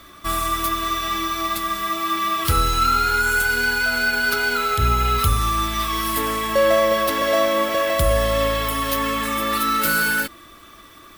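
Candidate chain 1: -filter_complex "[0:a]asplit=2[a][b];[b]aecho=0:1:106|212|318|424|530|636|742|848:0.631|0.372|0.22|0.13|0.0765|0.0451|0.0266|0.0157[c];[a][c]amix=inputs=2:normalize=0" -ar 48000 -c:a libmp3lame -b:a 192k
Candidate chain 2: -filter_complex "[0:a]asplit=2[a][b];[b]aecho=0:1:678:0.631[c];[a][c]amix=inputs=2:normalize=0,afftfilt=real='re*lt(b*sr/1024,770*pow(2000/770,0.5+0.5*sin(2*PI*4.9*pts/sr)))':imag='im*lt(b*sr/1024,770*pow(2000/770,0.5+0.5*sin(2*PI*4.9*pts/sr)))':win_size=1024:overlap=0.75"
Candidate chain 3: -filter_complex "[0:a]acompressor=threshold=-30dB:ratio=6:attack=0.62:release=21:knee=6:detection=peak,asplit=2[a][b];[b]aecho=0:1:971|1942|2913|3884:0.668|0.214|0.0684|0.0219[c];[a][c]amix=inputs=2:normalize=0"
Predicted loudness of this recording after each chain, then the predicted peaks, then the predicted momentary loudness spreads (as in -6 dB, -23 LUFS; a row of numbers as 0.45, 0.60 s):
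-18.0, -21.5, -30.0 LUFS; -4.5, -6.0, -19.0 dBFS; 6, 9, 3 LU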